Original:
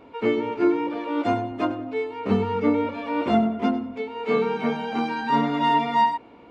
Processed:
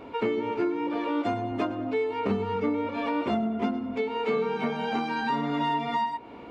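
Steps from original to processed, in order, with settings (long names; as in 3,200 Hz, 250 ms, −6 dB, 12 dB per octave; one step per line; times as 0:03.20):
downward compressor 6 to 1, threshold −30 dBFS, peak gain reduction 14.5 dB
on a send: convolution reverb RT60 0.60 s, pre-delay 3 ms, DRR 16 dB
on the sum: level +5 dB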